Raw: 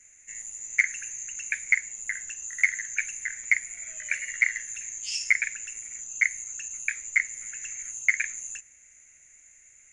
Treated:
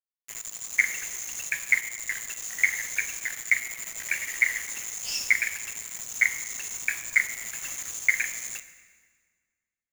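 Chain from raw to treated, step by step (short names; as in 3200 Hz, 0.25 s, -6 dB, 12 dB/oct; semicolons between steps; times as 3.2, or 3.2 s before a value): 5.75–7.99 fifteen-band EQ 100 Hz +6 dB, 250 Hz +10 dB, 1000 Hz +12 dB; bit-crush 6-bit; reverb RT60 1.7 s, pre-delay 6 ms, DRR 10 dB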